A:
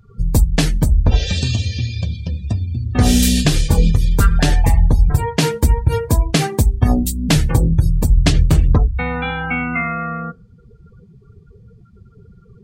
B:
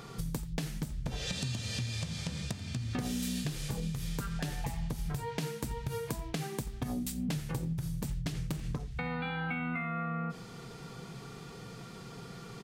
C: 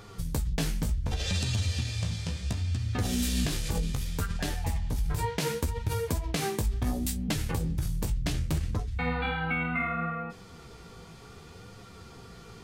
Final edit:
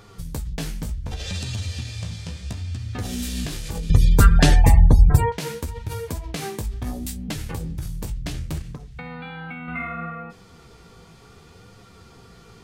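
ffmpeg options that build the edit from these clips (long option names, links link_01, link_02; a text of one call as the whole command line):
ffmpeg -i take0.wav -i take1.wav -i take2.wav -filter_complex "[2:a]asplit=3[link_01][link_02][link_03];[link_01]atrim=end=3.902[link_04];[0:a]atrim=start=3.898:end=5.322[link_05];[link_02]atrim=start=5.318:end=8.622[link_06];[1:a]atrim=start=8.618:end=9.682[link_07];[link_03]atrim=start=9.678[link_08];[link_04][link_05]acrossfade=duration=0.004:curve1=hsin:curve2=hsin[link_09];[link_09][link_06]acrossfade=duration=0.004:curve1=hsin:curve2=hsin[link_10];[link_10][link_07]acrossfade=duration=0.004:curve1=hsin:curve2=hsin[link_11];[link_11][link_08]acrossfade=duration=0.004:curve1=hsin:curve2=hsin" out.wav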